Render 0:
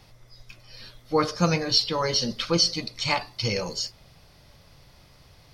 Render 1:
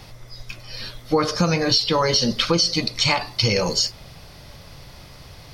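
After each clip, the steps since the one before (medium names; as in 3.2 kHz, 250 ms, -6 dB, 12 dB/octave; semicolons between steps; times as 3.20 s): in parallel at -1 dB: peak limiter -16 dBFS, peak gain reduction 9 dB; on the sum: compression 6:1, threshold -21 dBFS, peak gain reduction 8.5 dB; trim +5.5 dB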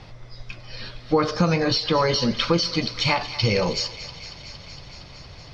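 distance through air 140 m; thinning echo 231 ms, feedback 82%, high-pass 1 kHz, level -13.5 dB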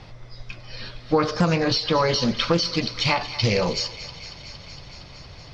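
loudspeaker Doppler distortion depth 0.26 ms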